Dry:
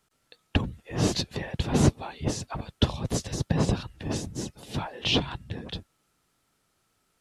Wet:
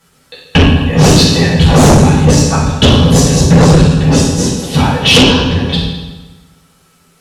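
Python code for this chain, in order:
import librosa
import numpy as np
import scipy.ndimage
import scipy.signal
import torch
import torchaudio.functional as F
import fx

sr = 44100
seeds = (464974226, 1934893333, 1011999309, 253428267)

y = fx.dereverb_blind(x, sr, rt60_s=0.72)
y = fx.rev_fdn(y, sr, rt60_s=1.2, lf_ratio=1.1, hf_ratio=0.9, size_ms=36.0, drr_db=-9.5)
y = fx.fold_sine(y, sr, drive_db=10, ceiling_db=-0.5)
y = y * 10.0 ** (-1.0 / 20.0)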